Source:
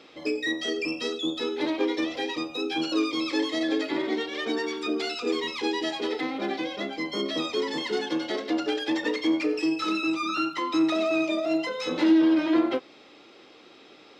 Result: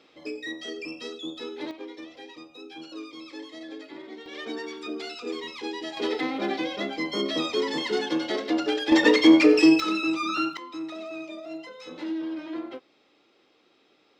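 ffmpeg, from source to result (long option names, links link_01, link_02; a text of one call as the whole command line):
ffmpeg -i in.wav -af "asetnsamples=nb_out_samples=441:pad=0,asendcmd='1.71 volume volume -14dB;4.26 volume volume -6dB;5.97 volume volume 1.5dB;8.92 volume volume 9.5dB;9.8 volume volume 0.5dB;10.57 volume volume -12dB',volume=-7dB" out.wav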